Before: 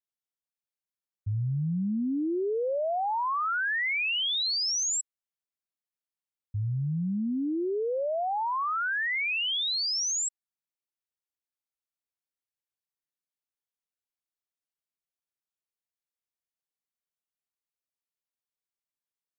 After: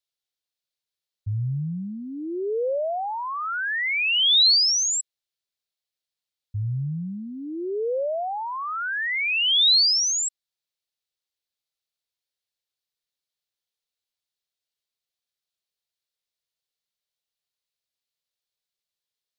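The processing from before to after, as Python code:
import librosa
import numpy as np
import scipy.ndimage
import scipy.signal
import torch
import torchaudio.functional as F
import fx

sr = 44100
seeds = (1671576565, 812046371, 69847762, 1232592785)

y = fx.graphic_eq(x, sr, hz=(125, 250, 500, 1000, 4000), db=(3, -9, 5, -4, 11))
y = F.gain(torch.from_numpy(y), 1.5).numpy()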